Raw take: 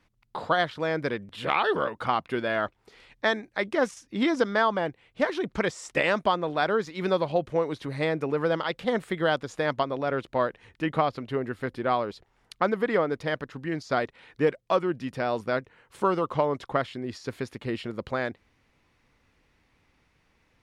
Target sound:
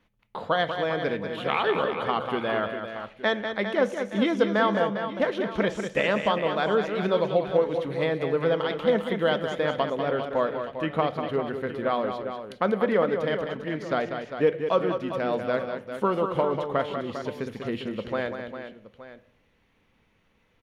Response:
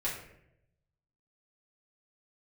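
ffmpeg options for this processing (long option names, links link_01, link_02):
-filter_complex "[0:a]equalizer=frequency=200:width_type=o:width=0.33:gain=6,equalizer=frequency=500:width_type=o:width=0.33:gain=6,equalizer=frequency=3150:width_type=o:width=0.33:gain=4,equalizer=frequency=5000:width_type=o:width=0.33:gain=-7,equalizer=frequency=8000:width_type=o:width=0.33:gain=-8,aecho=1:1:193|401|870:0.422|0.335|0.158,asplit=2[link_01][link_02];[1:a]atrim=start_sample=2205,asetrate=52920,aresample=44100[link_03];[link_02][link_03]afir=irnorm=-1:irlink=0,volume=-13.5dB[link_04];[link_01][link_04]amix=inputs=2:normalize=0,volume=-3dB"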